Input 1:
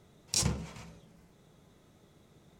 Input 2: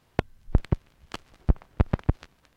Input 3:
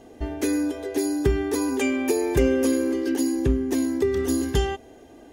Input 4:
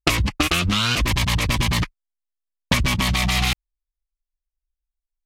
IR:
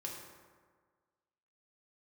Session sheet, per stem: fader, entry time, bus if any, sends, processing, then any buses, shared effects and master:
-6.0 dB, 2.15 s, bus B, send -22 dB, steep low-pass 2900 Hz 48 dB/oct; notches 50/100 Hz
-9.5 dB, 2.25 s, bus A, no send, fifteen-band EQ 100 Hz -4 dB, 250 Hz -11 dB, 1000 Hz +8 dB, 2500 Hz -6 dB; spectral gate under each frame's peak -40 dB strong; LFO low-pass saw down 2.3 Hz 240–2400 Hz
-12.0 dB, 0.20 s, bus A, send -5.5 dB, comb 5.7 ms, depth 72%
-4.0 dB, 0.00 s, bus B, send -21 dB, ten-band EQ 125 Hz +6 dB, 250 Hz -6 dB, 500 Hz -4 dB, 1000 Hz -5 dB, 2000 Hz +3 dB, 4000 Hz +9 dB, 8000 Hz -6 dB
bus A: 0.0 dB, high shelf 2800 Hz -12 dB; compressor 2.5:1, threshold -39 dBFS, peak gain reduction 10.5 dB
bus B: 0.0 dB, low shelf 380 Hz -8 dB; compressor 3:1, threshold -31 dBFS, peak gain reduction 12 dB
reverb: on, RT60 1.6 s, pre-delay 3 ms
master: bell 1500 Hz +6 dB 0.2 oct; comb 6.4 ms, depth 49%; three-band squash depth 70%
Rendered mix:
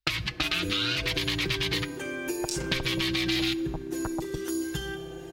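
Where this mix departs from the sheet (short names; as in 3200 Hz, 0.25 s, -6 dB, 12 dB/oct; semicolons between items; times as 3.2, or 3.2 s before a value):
stem 1: missing steep low-pass 2900 Hz 48 dB/oct; stem 2 -9.5 dB -> -0.5 dB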